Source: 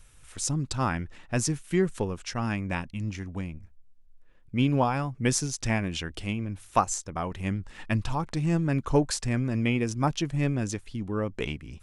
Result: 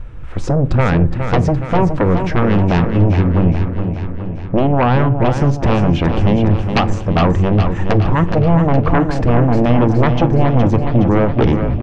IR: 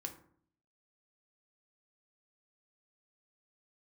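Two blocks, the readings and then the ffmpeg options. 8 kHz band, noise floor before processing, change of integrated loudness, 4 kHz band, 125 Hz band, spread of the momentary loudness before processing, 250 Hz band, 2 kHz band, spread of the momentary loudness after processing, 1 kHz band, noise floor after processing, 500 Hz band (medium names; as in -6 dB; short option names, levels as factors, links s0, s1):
no reading, -54 dBFS, +14.0 dB, +6.5 dB, +16.0 dB, 9 LU, +14.0 dB, +10.0 dB, 4 LU, +13.0 dB, -24 dBFS, +15.0 dB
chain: -filter_complex "[0:a]lowpass=2500,tiltshelf=f=1300:g=8.5,acompressor=threshold=0.1:ratio=6,aeval=exprs='0.237*sin(PI/2*3.16*val(0)/0.237)':c=same,aecho=1:1:417|834|1251|1668|2085|2502|2919|3336:0.422|0.249|0.147|0.0866|0.0511|0.0301|0.0178|0.0105,asplit=2[s0][s1];[1:a]atrim=start_sample=2205[s2];[s1][s2]afir=irnorm=-1:irlink=0,volume=0.668[s3];[s0][s3]amix=inputs=2:normalize=0"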